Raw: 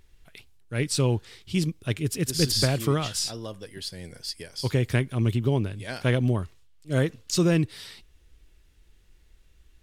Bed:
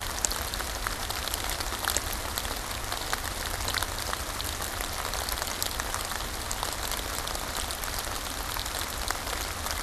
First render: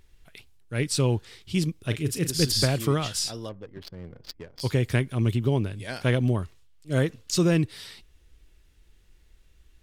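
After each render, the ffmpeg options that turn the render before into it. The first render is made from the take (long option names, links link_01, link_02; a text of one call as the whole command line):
ffmpeg -i in.wav -filter_complex "[0:a]asettb=1/sr,asplit=3[link_01][link_02][link_03];[link_01]atrim=end=1.794[link_04];[link_02]atrim=start=1.79:end=2.32,asetpts=PTS-STARTPTS,afade=type=in:duration=0.004:curve=qsin,afade=type=out:start_time=0.526:duration=0.004:curve=qsin,asplit=2[link_05][link_06];[link_06]adelay=36,volume=-10.5dB[link_07];[link_05][link_07]amix=inputs=2:normalize=0,atrim=end_sample=23373[link_08];[link_03]atrim=start=2.316[link_09];[link_04][link_08]acrossfade=duration=0.004:curve1=hsin:curve2=qsin[link_10];[link_10][link_09]acrossfade=duration=0.004:curve1=qsin:curve2=hsin,asettb=1/sr,asplit=3[link_11][link_12][link_13];[link_11]atrim=end=3.494[link_14];[link_12]atrim=start=3.49:end=4.61,asetpts=PTS-STARTPTS,afade=type=in:duration=0.004:curve=qsin,afade=type=out:start_time=1.116:duration=0.004:curve=qsin,adynamicsmooth=sensitivity=5.5:basefreq=520[link_15];[link_13]atrim=start=4.606[link_16];[link_14][link_15]acrossfade=duration=0.004:curve1=hsin:curve2=qsin[link_17];[link_17][link_16]acrossfade=duration=0.004:curve1=qsin:curve2=hsin" out.wav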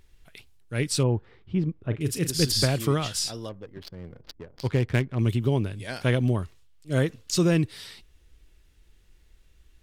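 ffmpeg -i in.wav -filter_complex "[0:a]asettb=1/sr,asplit=3[link_01][link_02][link_03];[link_01]atrim=end=1.034[link_04];[link_02]atrim=start=1.03:end=2.01,asetpts=PTS-STARTPTS,afade=type=in:duration=0.004:curve=qsin,afade=type=out:start_time=0.976:duration=0.004:curve=qsin,lowpass=1300[link_05];[link_03]atrim=start=2.006[link_06];[link_04][link_05]acrossfade=duration=0.004:curve1=hsin:curve2=qsin[link_07];[link_07][link_06]acrossfade=duration=0.004:curve1=qsin:curve2=hsin,asettb=1/sr,asplit=3[link_08][link_09][link_10];[link_08]atrim=end=4.214[link_11];[link_09]atrim=start=4.21:end=5.19,asetpts=PTS-STARTPTS,afade=type=in:duration=0.004:curve=qsin,afade=type=out:start_time=0.976:duration=0.004:curve=qsin,adynamicsmooth=sensitivity=6.5:basefreq=1100[link_12];[link_10]atrim=start=5.186[link_13];[link_11][link_12]acrossfade=duration=0.004:curve1=hsin:curve2=qsin[link_14];[link_14][link_13]acrossfade=duration=0.004:curve1=qsin:curve2=hsin" out.wav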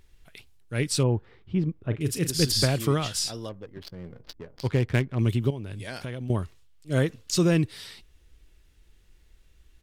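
ffmpeg -i in.wav -filter_complex "[0:a]asplit=3[link_01][link_02][link_03];[link_01]afade=type=out:start_time=3.89:duration=0.02[link_04];[link_02]asplit=2[link_05][link_06];[link_06]adelay=17,volume=-10.5dB[link_07];[link_05][link_07]amix=inputs=2:normalize=0,afade=type=in:start_time=3.89:duration=0.02,afade=type=out:start_time=4.53:duration=0.02[link_08];[link_03]afade=type=in:start_time=4.53:duration=0.02[link_09];[link_04][link_08][link_09]amix=inputs=3:normalize=0,asettb=1/sr,asplit=3[link_10][link_11][link_12];[link_10]atrim=end=5.504[link_13];[link_11]atrim=start=5.5:end=6.3,asetpts=PTS-STARTPTS,afade=type=in:duration=0.004:curve=qsin,afade=type=out:start_time=0.796:duration=0.004:curve=qsin,acompressor=threshold=-30dB:ratio=16:attack=3.2:release=140:knee=1:detection=peak[link_14];[link_12]atrim=start=6.296[link_15];[link_13][link_14]acrossfade=duration=0.004:curve1=hsin:curve2=qsin[link_16];[link_16][link_15]acrossfade=duration=0.004:curve1=qsin:curve2=hsin" out.wav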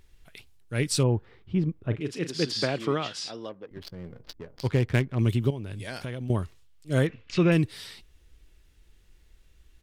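ffmpeg -i in.wav -filter_complex "[0:a]asettb=1/sr,asplit=3[link_01][link_02][link_03];[link_01]atrim=end=2.004[link_04];[link_02]atrim=start=2:end=3.71,asetpts=PTS-STARTPTS,afade=type=in:duration=0.004:curve=qsin,afade=type=out:start_time=1.706:duration=0.004:curve=qsin,highpass=230,lowpass=3800[link_05];[link_03]atrim=start=3.706[link_06];[link_04][link_05]acrossfade=duration=0.004:curve1=hsin:curve2=qsin[link_07];[link_07][link_06]acrossfade=duration=0.004:curve1=qsin:curve2=hsin,asettb=1/sr,asplit=3[link_08][link_09][link_10];[link_08]atrim=end=7.074[link_11];[link_09]atrim=start=7.07:end=7.52,asetpts=PTS-STARTPTS,afade=type=in:duration=0.004:curve=qsin,afade=type=out:start_time=0.446:duration=0.004:curve=qsin,lowpass=frequency=2400:width_type=q:width=2.8[link_12];[link_10]atrim=start=7.516[link_13];[link_11][link_12]acrossfade=duration=0.004:curve1=hsin:curve2=qsin[link_14];[link_14][link_13]acrossfade=duration=0.004:curve1=qsin:curve2=hsin" out.wav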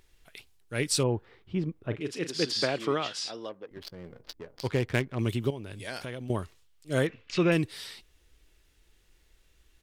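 ffmpeg -i in.wav -af "bass=frequency=250:gain=-7,treble=frequency=4000:gain=1" out.wav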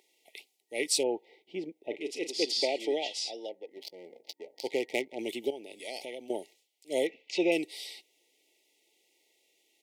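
ffmpeg -i in.wav -af "afftfilt=real='re*(1-between(b*sr/4096,910,1900))':imag='im*(1-between(b*sr/4096,910,1900))':win_size=4096:overlap=0.75,highpass=frequency=320:width=0.5412,highpass=frequency=320:width=1.3066" out.wav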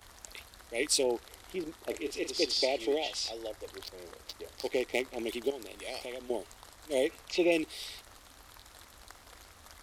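ffmpeg -i in.wav -i bed.wav -filter_complex "[1:a]volume=-21.5dB[link_01];[0:a][link_01]amix=inputs=2:normalize=0" out.wav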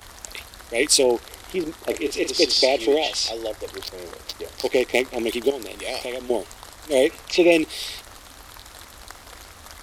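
ffmpeg -i in.wav -af "volume=11dB" out.wav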